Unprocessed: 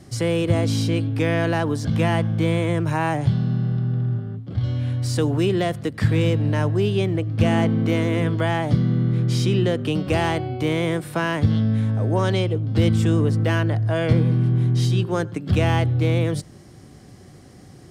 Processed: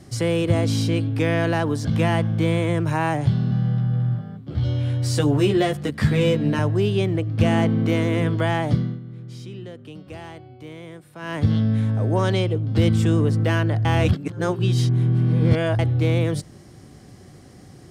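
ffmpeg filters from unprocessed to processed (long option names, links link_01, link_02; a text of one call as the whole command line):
ffmpeg -i in.wav -filter_complex "[0:a]asettb=1/sr,asplit=3[link_01][link_02][link_03];[link_01]atrim=end=3.504[link_04];[link_02]atrim=start=3.5:end=6.59,asetpts=PTS-STARTPTS,afade=type=in:duration=0.004:curve=qsin,afade=type=out:start_time=3.086:duration=0.004:curve=qsin,asplit=2[link_05][link_06];[link_06]adelay=14,volume=-2dB[link_07];[link_05][link_07]amix=inputs=2:normalize=0,atrim=end_sample=136269[link_08];[link_03]atrim=start=6.586[link_09];[link_04][link_08]acrossfade=duration=0.004:curve1=hsin:curve2=qsin[link_10];[link_10][link_09]acrossfade=duration=0.004:curve1=qsin:curve2=hsin,asplit=5[link_11][link_12][link_13][link_14][link_15];[link_11]atrim=end=9,asetpts=PTS-STARTPTS,afade=type=out:start_time=8.7:duration=0.3:silence=0.149624[link_16];[link_12]atrim=start=9:end=11.18,asetpts=PTS-STARTPTS,volume=-16.5dB[link_17];[link_13]atrim=start=11.18:end=13.852,asetpts=PTS-STARTPTS,afade=type=in:duration=0.3:silence=0.149624[link_18];[link_14]atrim=start=13.848:end=15.792,asetpts=PTS-STARTPTS,areverse[link_19];[link_15]atrim=start=15.788[link_20];[link_16][link_17][link_18]concat=n=3:v=0:a=1[link_21];[link_21][link_19]acrossfade=duration=0.004:curve1=hsin:curve2=hsin[link_22];[link_22][link_20]acrossfade=duration=0.004:curve1=hsin:curve2=hsin" out.wav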